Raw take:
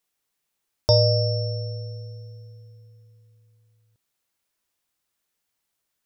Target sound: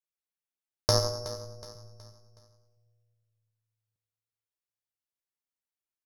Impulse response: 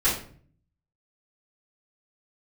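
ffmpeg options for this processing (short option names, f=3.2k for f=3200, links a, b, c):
-filter_complex "[0:a]asettb=1/sr,asplit=3[a][b][c];[a]atrim=end=1.754[d];[b]atrim=start=1.75:end=2.4,asetpts=PTS-STARTPTS,afade=t=in:d=0.004:c=qsin,afade=t=out:st=0.646:d=0.004:c=qsin,equalizer=f=200:w=0.91:g=9[e];[c]atrim=start=2.396[f];[d][e]acrossfade=d=0.004:c1=hsin:c2=qsin[g];[g][f]acrossfade=d=0.004:c1=qsin:c2=hsin,aeval=exprs='0.562*(cos(1*acos(clip(val(0)/0.562,-1,1)))-cos(1*PI/2))+0.112*(cos(2*acos(clip(val(0)/0.562,-1,1)))-cos(2*PI/2))+0.178*(cos(3*acos(clip(val(0)/0.562,-1,1)))-cos(3*PI/2))+0.00631*(cos(5*acos(clip(val(0)/0.562,-1,1)))-cos(5*PI/2))+0.0126*(cos(8*acos(clip(val(0)/0.562,-1,1)))-cos(8*PI/2))':c=same,aecho=1:1:370|740|1110|1480:0.188|0.0772|0.0317|0.013,asplit=2[h][i];[1:a]atrim=start_sample=2205,adelay=81[j];[i][j]afir=irnorm=-1:irlink=0,volume=-26.5dB[k];[h][k]amix=inputs=2:normalize=0"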